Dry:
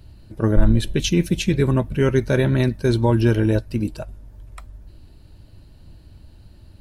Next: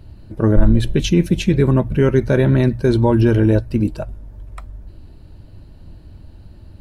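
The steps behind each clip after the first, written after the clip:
high-shelf EQ 2,300 Hz −9 dB
mains-hum notches 60/120 Hz
in parallel at +2 dB: brickwall limiter −13.5 dBFS, peak gain reduction 9.5 dB
on the sum: level −1 dB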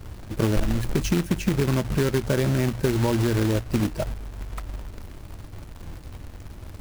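parametric band 3,500 Hz −13 dB 0.5 octaves
downward compressor 5 to 1, threshold −20 dBFS, peak gain reduction 14 dB
log-companded quantiser 4 bits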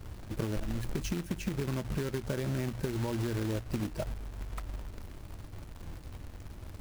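downward compressor, threshold −24 dBFS, peak gain reduction 8.5 dB
level −5.5 dB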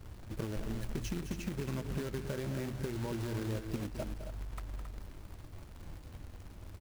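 loudspeakers that aren't time-aligned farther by 72 metres −11 dB, 93 metres −9 dB
level −4.5 dB

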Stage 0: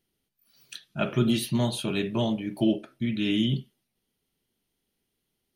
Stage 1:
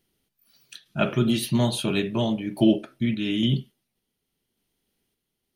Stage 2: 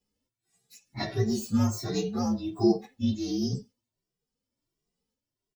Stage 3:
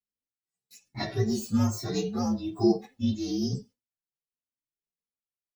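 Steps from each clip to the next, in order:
sample-and-hold tremolo; level +5 dB
partials spread apart or drawn together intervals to 120%; barber-pole flanger 2 ms +1.4 Hz
noise gate with hold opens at −53 dBFS

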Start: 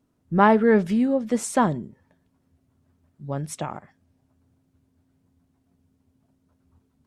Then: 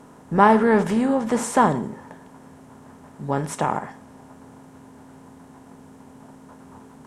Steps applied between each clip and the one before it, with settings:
compressor on every frequency bin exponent 0.6
parametric band 930 Hz +5.5 dB 0.29 octaves
convolution reverb, pre-delay 3 ms, DRR 11.5 dB
level −1 dB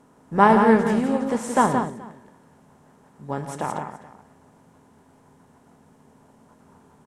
on a send: multi-tap delay 113/172/427 ms −11.5/−5/−17 dB
on the sum: expander for the loud parts 1.5 to 1, over −29 dBFS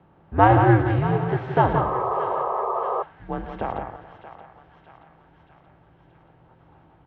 feedback echo with a high-pass in the loop 627 ms, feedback 66%, high-pass 1,100 Hz, level −10.5 dB
single-sideband voice off tune −100 Hz 150–3,500 Hz
sound drawn into the spectrogram noise, 0:01.75–0:03.03, 360–1,300 Hz −25 dBFS

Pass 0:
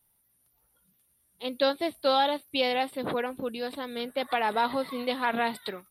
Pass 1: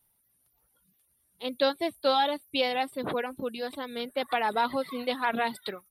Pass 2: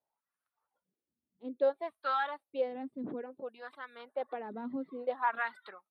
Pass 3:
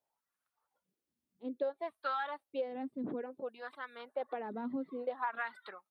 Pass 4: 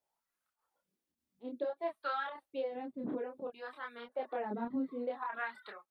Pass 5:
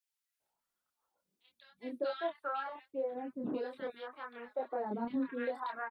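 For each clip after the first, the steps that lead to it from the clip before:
reverb reduction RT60 0.53 s
dynamic equaliser 1,700 Hz, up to +5 dB, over −42 dBFS, Q 2; LFO wah 0.59 Hz 230–1,400 Hz, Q 3.1
downward compressor 6 to 1, threshold −33 dBFS, peak gain reduction 9.5 dB; level +1 dB
square-wave tremolo 1.7 Hz, depth 60%, duty 90%; multi-voice chorus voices 6, 0.46 Hz, delay 27 ms, depth 3.2 ms; level +3.5 dB
multiband delay without the direct sound highs, lows 400 ms, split 1,700 Hz; level +1 dB

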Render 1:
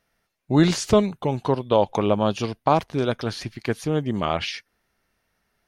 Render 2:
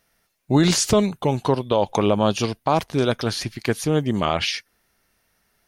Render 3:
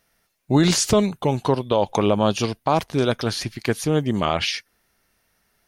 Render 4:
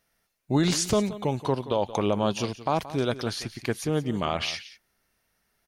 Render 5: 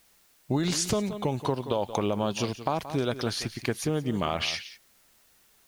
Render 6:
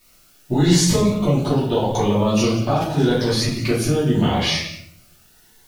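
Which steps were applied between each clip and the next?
high-shelf EQ 5,300 Hz +9 dB; brickwall limiter −10.5 dBFS, peak gain reduction 5.5 dB; level +3 dB
no processing that can be heard
single-tap delay 176 ms −15.5 dB; level −6 dB
downward compressor, threshold −25 dBFS, peak gain reduction 7.5 dB; background noise white −65 dBFS; level +2 dB
rectangular room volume 110 cubic metres, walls mixed, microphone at 2.7 metres; phaser whose notches keep moving one way rising 0.83 Hz

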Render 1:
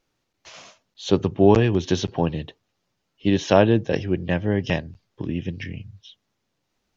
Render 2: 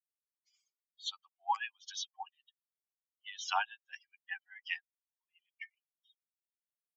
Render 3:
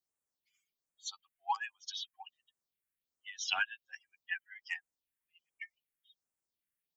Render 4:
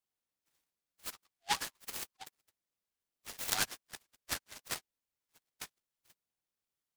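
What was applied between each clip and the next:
spectral dynamics exaggerated over time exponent 3; Chebyshev high-pass filter 760 Hz, order 8; level −2 dB
in parallel at −9 dB: soft clipping −27.5 dBFS, distortion −13 dB; on the sum: all-pass phaser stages 4, 1.3 Hz, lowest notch 760–4,400 Hz; level +3 dB
all-pass dispersion lows, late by 47 ms, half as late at 380 Hz; short delay modulated by noise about 3,100 Hz, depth 0.16 ms

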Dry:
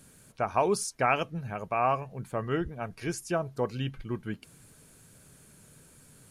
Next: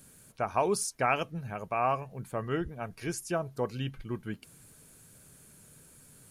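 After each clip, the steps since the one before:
high-shelf EQ 11,000 Hz +9 dB
level −2 dB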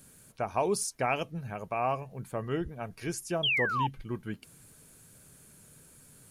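sound drawn into the spectrogram fall, 0:03.43–0:03.87, 830–3,400 Hz −26 dBFS
dynamic equaliser 1,400 Hz, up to −6 dB, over −43 dBFS, Q 1.7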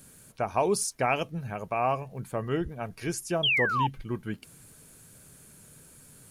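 surface crackle 38 per second −56 dBFS
level +3 dB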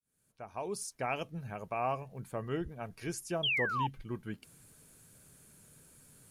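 fade in at the beginning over 1.40 s
level −6.5 dB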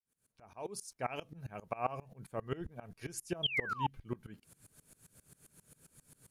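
tremolo with a ramp in dB swelling 7.5 Hz, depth 23 dB
level +3.5 dB

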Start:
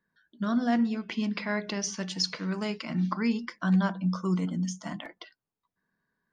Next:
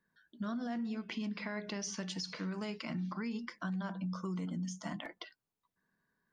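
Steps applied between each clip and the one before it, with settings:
brickwall limiter −24.5 dBFS, peak gain reduction 9 dB
downward compressor 2.5 to 1, threshold −37 dBFS, peak gain reduction 7 dB
level −1 dB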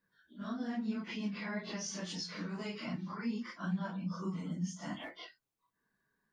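random phases in long frames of 100 ms

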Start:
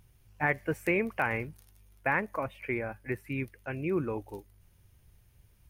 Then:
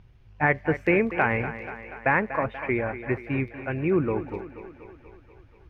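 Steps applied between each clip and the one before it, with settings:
high-frequency loss of the air 230 metres
on a send: feedback echo with a high-pass in the loop 241 ms, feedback 67%, high-pass 190 Hz, level −12 dB
on the sum: level +7.5 dB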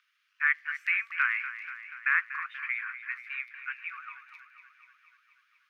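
Butterworth high-pass 1,200 Hz 72 dB per octave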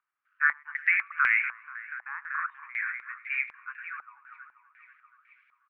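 single-tap delay 105 ms −18 dB
low-pass on a step sequencer 4 Hz 820–2,200 Hz
level −3.5 dB

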